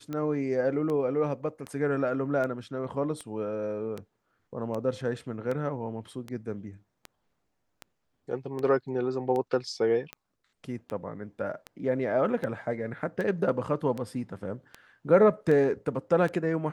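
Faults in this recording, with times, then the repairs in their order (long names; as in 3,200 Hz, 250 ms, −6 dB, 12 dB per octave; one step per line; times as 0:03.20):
scratch tick 78 rpm −22 dBFS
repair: click removal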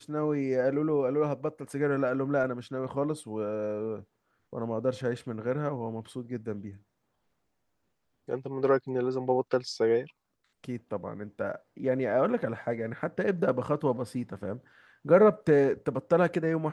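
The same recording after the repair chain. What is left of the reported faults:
none of them is left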